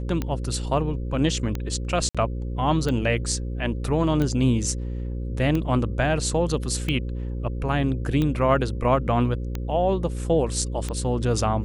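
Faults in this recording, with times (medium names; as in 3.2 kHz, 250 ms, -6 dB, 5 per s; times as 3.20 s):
buzz 60 Hz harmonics 9 -29 dBFS
tick 45 rpm -14 dBFS
2.09–2.15 s: dropout 56 ms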